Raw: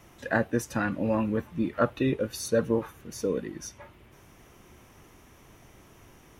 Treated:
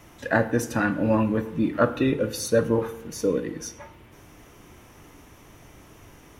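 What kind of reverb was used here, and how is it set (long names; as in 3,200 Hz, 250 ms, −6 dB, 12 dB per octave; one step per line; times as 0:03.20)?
feedback delay network reverb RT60 0.83 s, low-frequency decay 1.1×, high-frequency decay 0.6×, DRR 9.5 dB
level +4 dB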